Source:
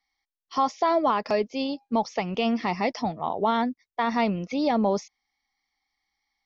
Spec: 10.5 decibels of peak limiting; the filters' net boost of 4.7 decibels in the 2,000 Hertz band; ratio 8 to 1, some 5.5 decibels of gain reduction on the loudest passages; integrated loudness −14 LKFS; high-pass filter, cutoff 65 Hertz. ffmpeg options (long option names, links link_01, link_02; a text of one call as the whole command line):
ffmpeg -i in.wav -af "highpass=65,equalizer=frequency=2000:width_type=o:gain=5.5,acompressor=threshold=-23dB:ratio=8,volume=20dB,alimiter=limit=-4dB:level=0:latency=1" out.wav